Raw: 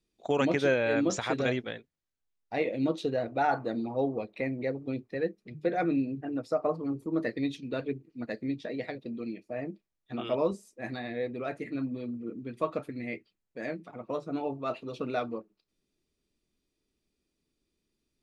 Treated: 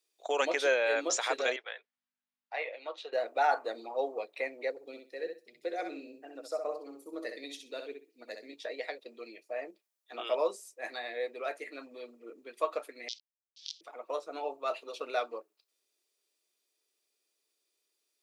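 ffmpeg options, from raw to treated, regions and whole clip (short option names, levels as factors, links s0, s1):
-filter_complex "[0:a]asettb=1/sr,asplit=3[s0][s1][s2];[s0]atrim=end=1.564[s3];[s1]atrim=start=1.56:end=3.13,asetpts=PTS-STARTPTS,afade=t=in:d=0.004:c=qsin,afade=t=out:st=1.566:d=0.004:c=qsin,highpass=770,lowpass=2900,aeval=exprs='val(0)+0.000316*(sin(2*PI*50*n/s)+sin(2*PI*2*50*n/s)/2+sin(2*PI*3*50*n/s)/3+sin(2*PI*4*50*n/s)/4+sin(2*PI*5*50*n/s)/5)':c=same[s4];[s2]atrim=start=3.126[s5];[s3][s4]acrossfade=d=0.004:c1=hsin:c2=qsin[s6];[s6][s5]acrossfade=d=0.004:c1=qsin:c2=hsin,asettb=1/sr,asplit=3[s7][s8][s9];[s7]atrim=end=4.704[s10];[s8]atrim=start=4.7:end=8.53,asetpts=PTS-STARTPTS,afade=t=in:d=0.004:c=qsin,afade=t=out:st=3.826:d=0.004:c=qsin,equalizer=f=1200:t=o:w=2.6:g=-9,aecho=1:1:64|128|192:0.473|0.0946|0.0189,atrim=end_sample=168903[s11];[s9]atrim=start=8.526[s12];[s10][s11]acrossfade=d=0.004:c1=hsin:c2=qsin[s13];[s13][s12]acrossfade=d=0.004:c1=qsin:c2=hsin,asettb=1/sr,asplit=3[s14][s15][s16];[s14]atrim=end=13.084[s17];[s15]atrim=start=13.08:end=13.81,asetpts=PTS-STARTPTS,afade=t=in:d=0.004:c=qsin,afade=t=out:st=0.726:d=0.004:c=qsin,aeval=exprs='val(0)+0.5*0.00398*sgn(val(0))':c=same,acrusher=bits=5:dc=4:mix=0:aa=0.000001,asuperpass=centerf=4300:order=8:qfactor=1.6[s18];[s16]atrim=start=13.806[s19];[s17][s18]acrossfade=d=0.004:c1=hsin:c2=qsin[s20];[s20][s19]acrossfade=d=0.004:c1=qsin:c2=hsin,highpass=f=460:w=0.5412,highpass=f=460:w=1.3066,highshelf=f=5300:g=10"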